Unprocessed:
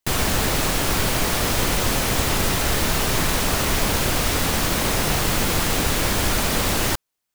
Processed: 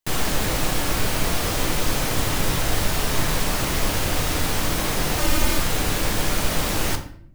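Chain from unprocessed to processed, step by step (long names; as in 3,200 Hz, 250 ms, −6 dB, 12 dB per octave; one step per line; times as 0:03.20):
0:05.18–0:05.58: comb filter 3.3 ms, depth 72%
rectangular room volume 94 cubic metres, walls mixed, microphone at 0.47 metres
level −4 dB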